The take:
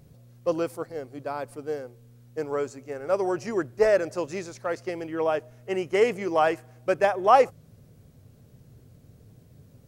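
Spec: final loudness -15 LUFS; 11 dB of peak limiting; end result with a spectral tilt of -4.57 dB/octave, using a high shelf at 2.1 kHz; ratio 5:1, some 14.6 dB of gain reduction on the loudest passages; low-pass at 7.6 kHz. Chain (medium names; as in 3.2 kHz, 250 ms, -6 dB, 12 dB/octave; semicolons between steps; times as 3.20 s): low-pass 7.6 kHz; treble shelf 2.1 kHz -8 dB; compression 5:1, threshold -31 dBFS; trim +27 dB; peak limiter -5.5 dBFS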